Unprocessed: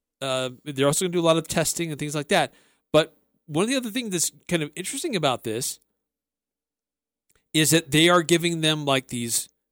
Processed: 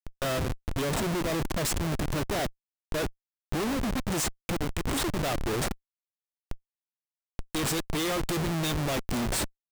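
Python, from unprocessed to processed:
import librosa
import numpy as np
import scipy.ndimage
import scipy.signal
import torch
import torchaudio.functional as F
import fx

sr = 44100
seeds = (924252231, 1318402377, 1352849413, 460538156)

y = x * (1.0 - 0.8 / 2.0 + 0.8 / 2.0 * np.cos(2.0 * np.pi * 3.6 * (np.arange(len(x)) / sr)))
y = fx.dmg_noise_colour(y, sr, seeds[0], colour='pink', level_db=-44.0)
y = fx.schmitt(y, sr, flips_db=-32.5)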